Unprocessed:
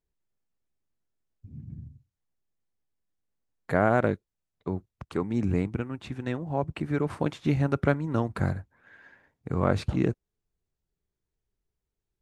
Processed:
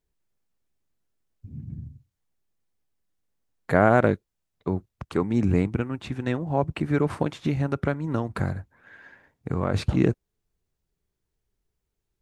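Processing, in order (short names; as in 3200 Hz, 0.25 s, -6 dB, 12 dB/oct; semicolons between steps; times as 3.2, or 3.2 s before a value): 7.22–9.74 compressor 2.5:1, threshold -28 dBFS, peak gain reduction 8 dB; gain +4.5 dB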